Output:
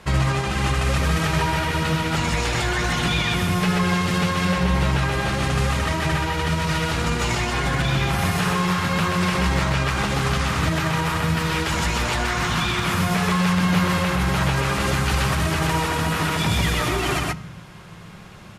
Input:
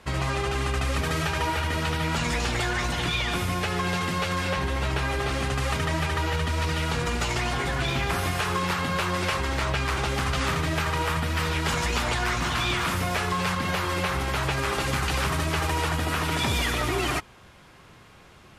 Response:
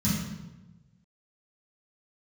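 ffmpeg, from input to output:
-filter_complex "[0:a]asplit=2[a][b];[b]aecho=0:1:128:0.668[c];[a][c]amix=inputs=2:normalize=0,alimiter=limit=-18.5dB:level=0:latency=1:release=118,asplit=2[d][e];[1:a]atrim=start_sample=2205[f];[e][f]afir=irnorm=-1:irlink=0,volume=-26dB[g];[d][g]amix=inputs=2:normalize=0,volume=5dB"

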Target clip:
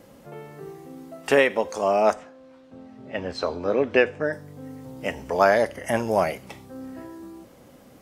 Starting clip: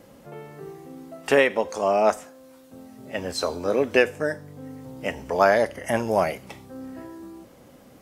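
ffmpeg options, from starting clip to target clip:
-filter_complex "[0:a]asettb=1/sr,asplit=3[a][b][c];[a]atrim=end=2.134[d];[b]atrim=start=2.13:end=4.33,asetpts=PTS-STARTPTS,afade=t=in:d=0.004:c=qsin,afade=t=out:st=2.196:d=0.004:c=qsin,lowpass=3.5k[e];[c]atrim=start=4.326[f];[d][e]acrossfade=d=0.004:c1=hsin:c2=qsin[g];[g][f]acrossfade=d=0.004:c1=qsin:c2=hsin"

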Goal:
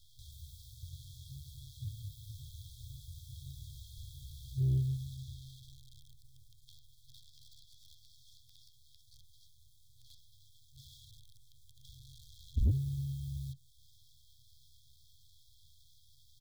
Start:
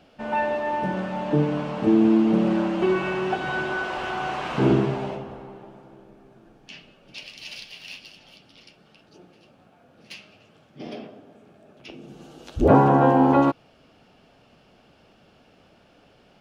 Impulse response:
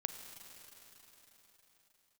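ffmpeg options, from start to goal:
-filter_complex "[0:a]asplit=2[a][b];[b]adelay=13,volume=-5.5dB[c];[a][c]amix=inputs=2:normalize=0,acrossover=split=1500[d][e];[e]acompressor=threshold=-54dB:ratio=6[f];[d][f]amix=inputs=2:normalize=0,acrusher=bits=8:dc=4:mix=0:aa=0.000001,afftfilt=real='re*(1-between(b*sr/4096,130,3200))':imag='im*(1-between(b*sr/4096,130,3200))':win_size=4096:overlap=0.75,asoftclip=type=tanh:threshold=-24.5dB,acrossover=split=3400[g][h];[h]acompressor=threshold=-59dB:ratio=4:attack=1:release=60[i];[g][i]amix=inputs=2:normalize=0,volume=1.5dB"

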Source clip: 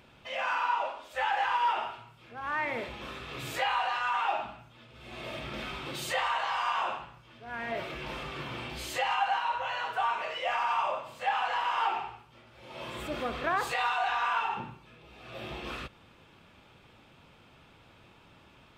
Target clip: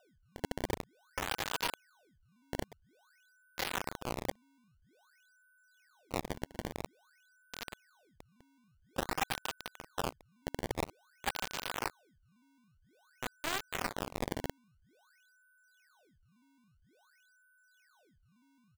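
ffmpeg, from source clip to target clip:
-af "highpass=f=75:w=0.5412,highpass=f=75:w=1.3066,bandreject=f=209.3:t=h:w=4,bandreject=f=418.6:t=h:w=4,bandreject=f=627.9:t=h:w=4,bandreject=f=837.2:t=h:w=4,bandreject=f=1.0465k:t=h:w=4,bandreject=f=1.2558k:t=h:w=4,bandreject=f=1.4651k:t=h:w=4,bandreject=f=1.6744k:t=h:w=4,bandreject=f=1.8837k:t=h:w=4,bandreject=f=2.093k:t=h:w=4,bandreject=f=2.3023k:t=h:w=4,bandreject=f=2.5116k:t=h:w=4,bandreject=f=2.7209k:t=h:w=4,acompressor=threshold=-39dB:ratio=2,aresample=8000,aresample=44100,aresample=11025,acrusher=bits=4:mix=0:aa=0.000001,aresample=44100,aeval=exprs='val(0)+0.000447*sin(2*PI*1500*n/s)':c=same,acrusher=samples=20:mix=1:aa=0.000001:lfo=1:lforange=32:lforate=0.5,volume=1dB"

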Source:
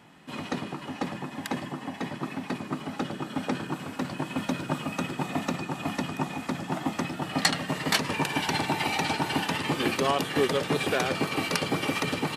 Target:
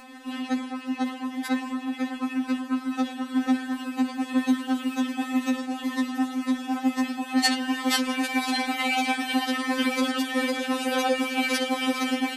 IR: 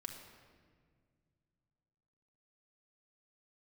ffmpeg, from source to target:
-af "acompressor=mode=upward:threshold=-37dB:ratio=2.5,afftfilt=real='re*3.46*eq(mod(b,12),0)':imag='im*3.46*eq(mod(b,12),0)':win_size=2048:overlap=0.75,volume=3.5dB"

